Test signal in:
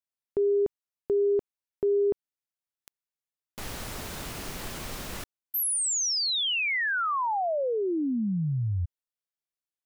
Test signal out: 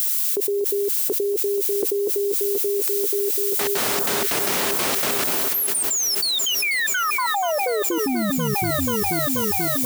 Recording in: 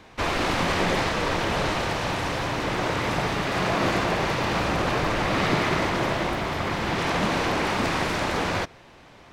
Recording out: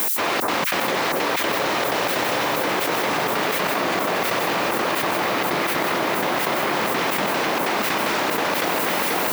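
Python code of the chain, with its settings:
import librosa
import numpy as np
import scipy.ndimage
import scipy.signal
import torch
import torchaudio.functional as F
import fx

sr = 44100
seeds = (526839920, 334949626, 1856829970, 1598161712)

p1 = scipy.signal.sosfilt(scipy.signal.butter(2, 270.0, 'highpass', fs=sr, output='sos'), x)
p2 = fx.rider(p1, sr, range_db=4, speed_s=0.5)
p3 = p1 + F.gain(torch.from_numpy(p2), -1.0).numpy()
p4 = fx.step_gate(p3, sr, bpm=188, pattern='x.xxx.xx.', floor_db=-60.0, edge_ms=4.5)
p5 = fx.dmg_noise_colour(p4, sr, seeds[0], colour='violet', level_db=-37.0)
p6 = p5 + fx.echo_alternate(p5, sr, ms=242, hz=1500.0, feedback_pct=85, wet_db=-8, dry=0)
p7 = fx.env_flatten(p6, sr, amount_pct=100)
y = F.gain(torch.from_numpy(p7), -5.0).numpy()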